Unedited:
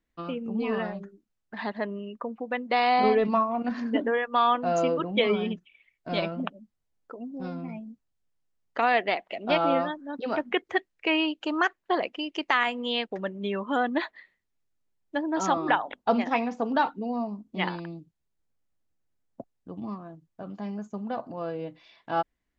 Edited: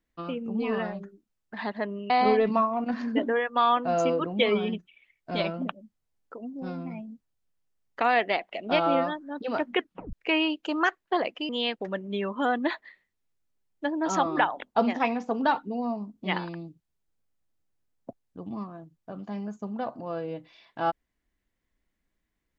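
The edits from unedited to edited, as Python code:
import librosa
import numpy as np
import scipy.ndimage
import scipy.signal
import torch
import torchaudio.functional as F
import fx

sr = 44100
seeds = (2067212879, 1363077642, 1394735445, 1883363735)

y = fx.edit(x, sr, fx.cut(start_s=2.1, length_s=0.78),
    fx.tape_stop(start_s=10.57, length_s=0.34),
    fx.cut(start_s=12.27, length_s=0.53), tone=tone)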